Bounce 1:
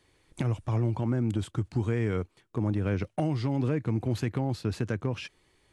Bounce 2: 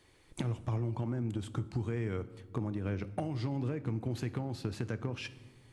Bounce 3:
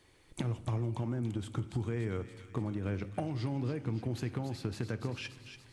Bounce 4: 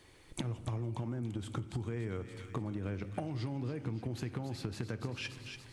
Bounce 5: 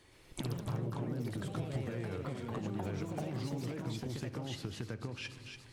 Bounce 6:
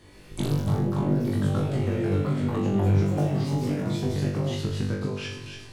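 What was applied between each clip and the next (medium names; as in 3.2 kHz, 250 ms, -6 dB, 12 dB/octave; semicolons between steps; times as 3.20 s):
compression 5:1, threshold -34 dBFS, peak gain reduction 10.5 dB; on a send at -13 dB: reverberation RT60 1.3 s, pre-delay 3 ms; on the sum: trim +1.5 dB
feedback echo behind a high-pass 286 ms, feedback 68%, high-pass 2.2 kHz, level -7.5 dB
compression 4:1, threshold -39 dBFS, peak gain reduction 8.5 dB; trim +4 dB
ever faster or slower copies 119 ms, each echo +3 st, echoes 3; trim -2.5 dB
tilt shelf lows +3.5 dB, about 650 Hz; on a send: flutter echo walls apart 3.5 m, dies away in 0.57 s; on the sum: trim +7.5 dB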